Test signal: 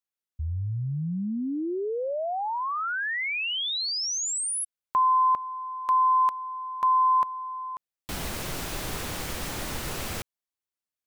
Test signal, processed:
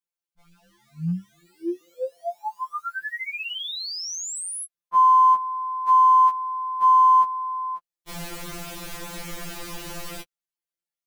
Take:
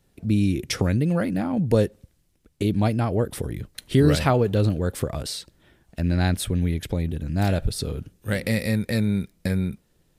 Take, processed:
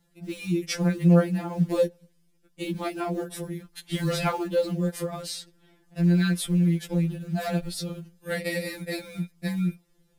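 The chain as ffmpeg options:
-filter_complex "[0:a]asplit=2[s0][s1];[s1]acrusher=bits=5:mode=log:mix=0:aa=0.000001,volume=0.501[s2];[s0][s2]amix=inputs=2:normalize=0,afftfilt=real='re*2.83*eq(mod(b,8),0)':imag='im*2.83*eq(mod(b,8),0)':win_size=2048:overlap=0.75,volume=0.631"

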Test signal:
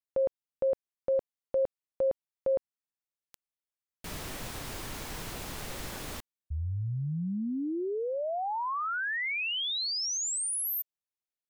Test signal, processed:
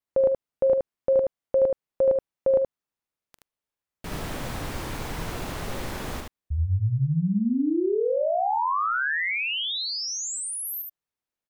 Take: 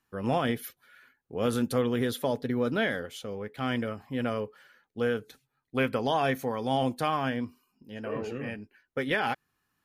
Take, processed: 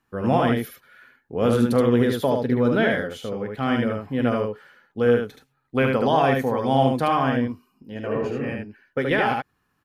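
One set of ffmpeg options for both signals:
-af "highshelf=f=2700:g=-9,aecho=1:1:44|75:0.158|0.668,volume=2.24"

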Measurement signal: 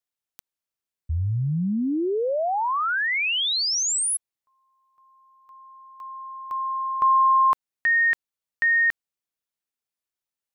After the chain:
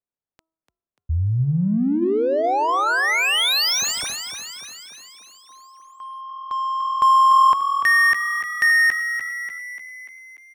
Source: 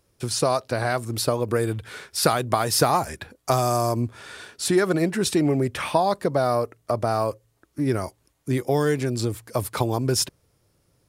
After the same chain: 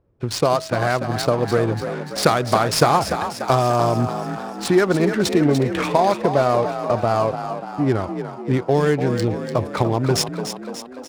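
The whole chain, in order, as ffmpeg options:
-filter_complex "[0:a]bandreject=f=323.3:t=h:w=4,bandreject=f=646.6:t=h:w=4,bandreject=f=969.9:t=h:w=4,bandreject=f=1293.2:t=h:w=4,adynamicsmooth=sensitivity=4.5:basefreq=990,asplit=8[s0][s1][s2][s3][s4][s5][s6][s7];[s1]adelay=293,afreqshift=41,volume=0.355[s8];[s2]adelay=586,afreqshift=82,volume=0.209[s9];[s3]adelay=879,afreqshift=123,volume=0.123[s10];[s4]adelay=1172,afreqshift=164,volume=0.0733[s11];[s5]adelay=1465,afreqshift=205,volume=0.0432[s12];[s6]adelay=1758,afreqshift=246,volume=0.0254[s13];[s7]adelay=2051,afreqshift=287,volume=0.015[s14];[s0][s8][s9][s10][s11][s12][s13][s14]amix=inputs=8:normalize=0,volume=1.58"

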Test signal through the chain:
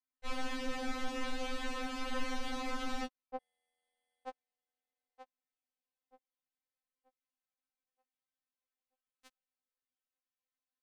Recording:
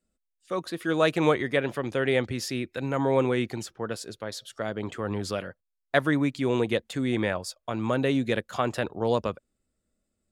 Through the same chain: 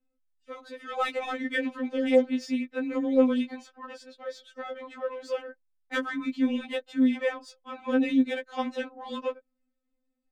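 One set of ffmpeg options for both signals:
-af "adynamicsmooth=sensitivity=2:basefreq=3500,afftfilt=real='re*3.46*eq(mod(b,12),0)':imag='im*3.46*eq(mod(b,12),0)':win_size=2048:overlap=0.75"

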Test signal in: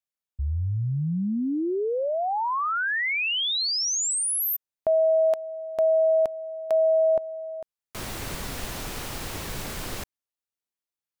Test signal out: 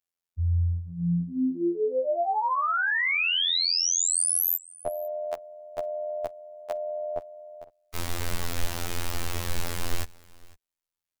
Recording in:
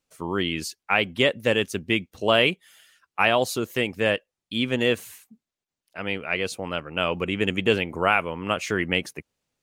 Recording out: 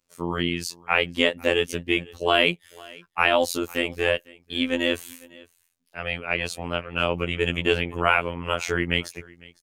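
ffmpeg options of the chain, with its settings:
-af "asubboost=boost=4:cutoff=65,aecho=1:1:503:0.0668,afftfilt=real='hypot(re,im)*cos(PI*b)':imag='0':win_size=2048:overlap=0.75,volume=1.58"

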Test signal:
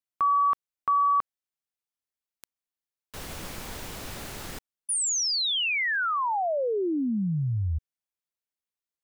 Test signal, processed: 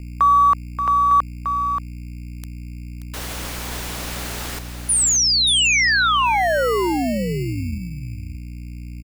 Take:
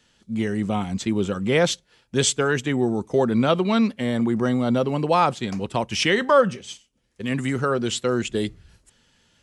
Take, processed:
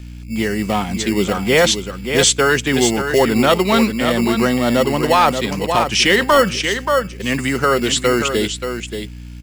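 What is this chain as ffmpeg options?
-filter_complex "[0:a]lowshelf=f=230:g=-11.5,aecho=1:1:580:0.398,aeval=exprs='val(0)+0.00891*(sin(2*PI*60*n/s)+sin(2*PI*2*60*n/s)/2+sin(2*PI*3*60*n/s)/3+sin(2*PI*4*60*n/s)/4+sin(2*PI*5*60*n/s)/5)':c=same,acrossover=split=530[s0][s1];[s0]acrusher=samples=18:mix=1:aa=0.000001[s2];[s2][s1]amix=inputs=2:normalize=0,apsyclip=5.96,volume=0.501"

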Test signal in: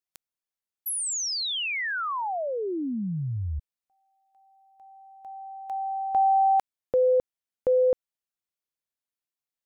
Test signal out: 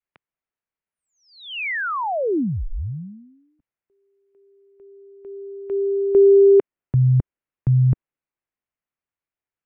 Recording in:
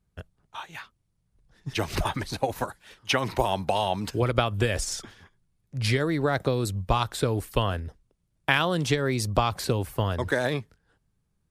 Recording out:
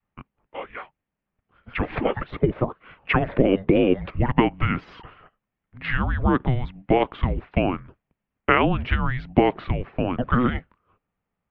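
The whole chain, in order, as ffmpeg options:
-af "highpass=f=260:t=q:w=0.5412,highpass=f=260:t=q:w=1.307,lowpass=f=3000:t=q:w=0.5176,lowpass=f=3000:t=q:w=0.7071,lowpass=f=3000:t=q:w=1.932,afreqshift=-380,adynamicequalizer=threshold=0.01:dfrequency=340:dqfactor=0.94:tfrequency=340:tqfactor=0.94:attack=5:release=100:ratio=0.375:range=2.5:mode=boostabove:tftype=bell,volume=1.68"

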